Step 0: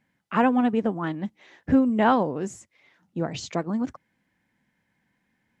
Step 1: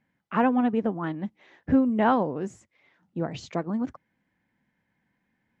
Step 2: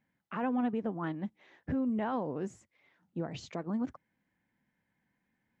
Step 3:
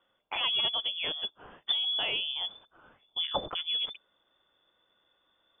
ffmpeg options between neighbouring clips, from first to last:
-af "lowpass=f=2.7k:p=1,volume=-1.5dB"
-af "alimiter=limit=-20.5dB:level=0:latency=1:release=80,volume=-5dB"
-af "aexciter=amount=8.2:drive=9.9:freq=2.8k,asubboost=boost=7:cutoff=110,lowpass=f=3.1k:t=q:w=0.5098,lowpass=f=3.1k:t=q:w=0.6013,lowpass=f=3.1k:t=q:w=0.9,lowpass=f=3.1k:t=q:w=2.563,afreqshift=-3600,volume=2.5dB"

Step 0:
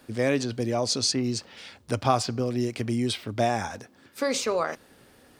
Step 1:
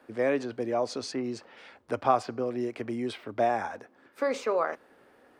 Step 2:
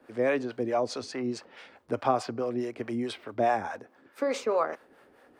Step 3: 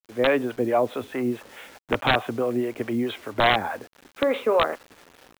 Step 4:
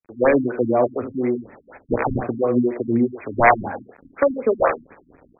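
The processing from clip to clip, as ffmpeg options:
-filter_complex "[0:a]acrossover=split=280 2200:gain=0.178 1 0.158[a][b][c];[a][b][c]amix=inputs=3:normalize=0"
-filter_complex "[0:a]acrossover=split=510[a][b];[a]aeval=exprs='val(0)*(1-0.7/2+0.7/2*cos(2*PI*4.7*n/s))':c=same[c];[b]aeval=exprs='val(0)*(1-0.7/2-0.7/2*cos(2*PI*4.7*n/s))':c=same[d];[c][d]amix=inputs=2:normalize=0,volume=4dB"
-af "dynaudnorm=f=130:g=3:m=6dB,aresample=8000,aeval=exprs='(mod(3.55*val(0)+1,2)-1)/3.55':c=same,aresample=44100,acrusher=bits=7:mix=0:aa=0.000001"
-filter_complex "[0:a]aecho=1:1:49|79:0.266|0.376,acrossover=split=410[a][b];[a]aeval=exprs='val(0)*(1-0.7/2+0.7/2*cos(2*PI*2.7*n/s))':c=same[c];[b]aeval=exprs='val(0)*(1-0.7/2-0.7/2*cos(2*PI*2.7*n/s))':c=same[d];[c][d]amix=inputs=2:normalize=0,afftfilt=real='re*lt(b*sr/1024,280*pow(2600/280,0.5+0.5*sin(2*PI*4.1*pts/sr)))':imag='im*lt(b*sr/1024,280*pow(2600/280,0.5+0.5*sin(2*PI*4.1*pts/sr)))':win_size=1024:overlap=0.75,volume=8.5dB"

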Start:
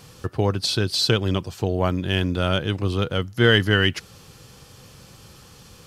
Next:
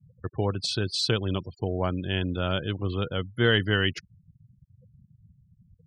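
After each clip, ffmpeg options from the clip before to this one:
-af "afftfilt=real='re*gte(hypot(re,im),0.0224)':imag='im*gte(hypot(re,im),0.0224)':win_size=1024:overlap=0.75,volume=-5.5dB"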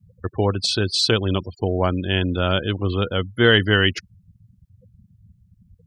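-af "equalizer=f=140:w=4.6:g=-12.5,volume=7.5dB"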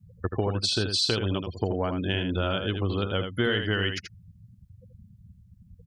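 -af "acompressor=threshold=-23dB:ratio=6,aecho=1:1:81:0.447"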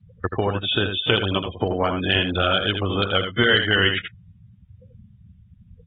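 -af "tiltshelf=f=630:g=-4.5,volume=6dB" -ar 32000 -c:a aac -b:a 16k

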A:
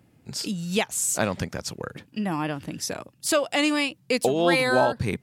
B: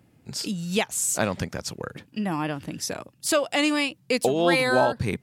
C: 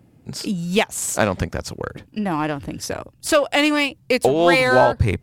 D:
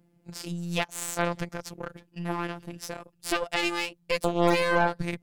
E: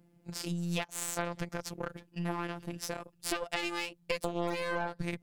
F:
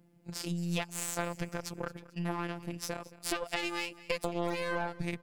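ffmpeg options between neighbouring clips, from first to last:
-af anull
-filter_complex "[0:a]asubboost=boost=9.5:cutoff=60,asplit=2[a][b];[b]adynamicsmooth=sensitivity=3:basefreq=1.2k,volume=0dB[c];[a][c]amix=inputs=2:normalize=0,volume=1dB"
-af "afftfilt=real='hypot(re,im)*cos(PI*b)':imag='0':win_size=1024:overlap=0.75,aeval=exprs='0.944*(cos(1*acos(clip(val(0)/0.944,-1,1)))-cos(1*PI/2))+0.15*(cos(6*acos(clip(val(0)/0.944,-1,1)))-cos(6*PI/2))':c=same,volume=-8dB"
-af "acompressor=threshold=-29dB:ratio=5"
-af "aecho=1:1:221|442|663:0.106|0.0424|0.0169"

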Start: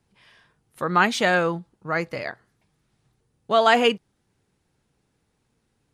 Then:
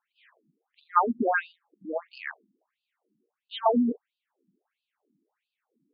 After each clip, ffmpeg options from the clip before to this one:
-af "aemphasis=mode=reproduction:type=bsi,afftfilt=real='re*between(b*sr/1024,240*pow(3600/240,0.5+0.5*sin(2*PI*1.5*pts/sr))/1.41,240*pow(3600/240,0.5+0.5*sin(2*PI*1.5*pts/sr))*1.41)':imag='im*between(b*sr/1024,240*pow(3600/240,0.5+0.5*sin(2*PI*1.5*pts/sr))/1.41,240*pow(3600/240,0.5+0.5*sin(2*PI*1.5*pts/sr))*1.41)':win_size=1024:overlap=0.75"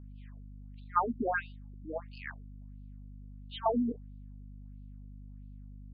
-af "aeval=exprs='val(0)+0.01*(sin(2*PI*50*n/s)+sin(2*PI*2*50*n/s)/2+sin(2*PI*3*50*n/s)/3+sin(2*PI*4*50*n/s)/4+sin(2*PI*5*50*n/s)/5)':c=same,volume=-6.5dB"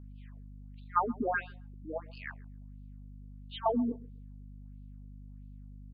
-filter_complex "[0:a]asplit=2[a][b];[b]adelay=133,lowpass=f=1.2k:p=1,volume=-21dB,asplit=2[c][d];[d]adelay=133,lowpass=f=1.2k:p=1,volume=0.22[e];[a][c][e]amix=inputs=3:normalize=0"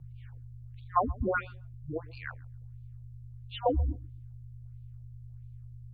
-af "afreqshift=-170,volume=2dB"

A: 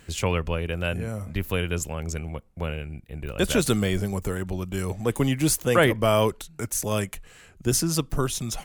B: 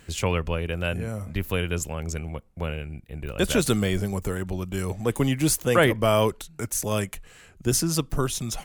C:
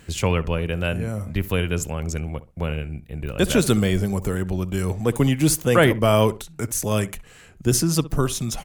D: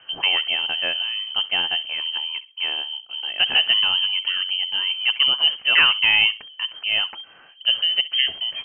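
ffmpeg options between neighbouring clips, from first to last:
-af anull
-filter_complex "[0:a]equalizer=f=160:w=0.55:g=3,asplit=2[a][b];[b]adelay=65,lowpass=f=1.5k:p=1,volume=-16dB,asplit=2[c][d];[d]adelay=65,lowpass=f=1.5k:p=1,volume=0.25[e];[a][c][e]amix=inputs=3:normalize=0,volume=2dB"
-af "lowpass=f=2.7k:t=q:w=0.5098,lowpass=f=2.7k:t=q:w=0.6013,lowpass=f=2.7k:t=q:w=0.9,lowpass=f=2.7k:t=q:w=2.563,afreqshift=-3200"

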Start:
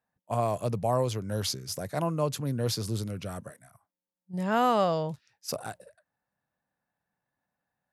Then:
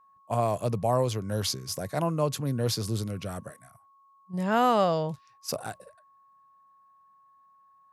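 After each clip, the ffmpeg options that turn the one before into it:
-af "aeval=exprs='val(0)+0.00112*sin(2*PI*1100*n/s)':c=same,volume=1.5dB"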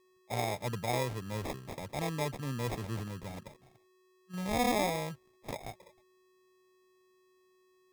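-af "acrusher=samples=30:mix=1:aa=0.000001,volume=-7.5dB"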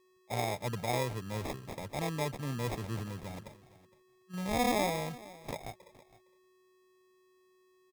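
-af "aecho=1:1:462:0.106"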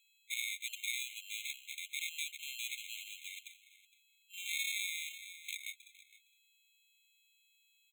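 -filter_complex "[0:a]acrossover=split=290[a][b];[b]acompressor=threshold=-36dB:ratio=2.5[c];[a][c]amix=inputs=2:normalize=0,afftfilt=real='re*eq(mod(floor(b*sr/1024/2100),2),1)':imag='im*eq(mod(floor(b*sr/1024/2100),2),1)':win_size=1024:overlap=0.75,volume=9dB"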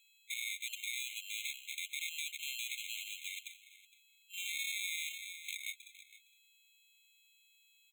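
-af "alimiter=level_in=6.5dB:limit=-24dB:level=0:latency=1:release=61,volume=-6.5dB,volume=3.5dB"

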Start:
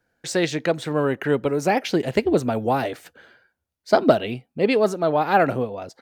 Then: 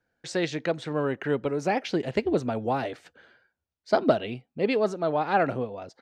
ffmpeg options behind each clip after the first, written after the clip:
-af "lowpass=6.3k,volume=-5.5dB"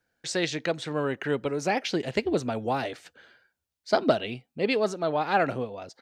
-af "highshelf=f=2.4k:g=8.5,volume=-1.5dB"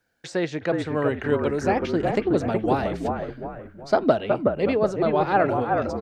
-filter_complex "[0:a]acrossover=split=1800[a][b];[a]asplit=6[c][d][e][f][g][h];[d]adelay=369,afreqshift=-42,volume=-3dB[i];[e]adelay=738,afreqshift=-84,volume=-10.5dB[j];[f]adelay=1107,afreqshift=-126,volume=-18.1dB[k];[g]adelay=1476,afreqshift=-168,volume=-25.6dB[l];[h]adelay=1845,afreqshift=-210,volume=-33.1dB[m];[c][i][j][k][l][m]amix=inputs=6:normalize=0[n];[b]acompressor=threshold=-45dB:ratio=6[o];[n][o]amix=inputs=2:normalize=0,volume=3.5dB"

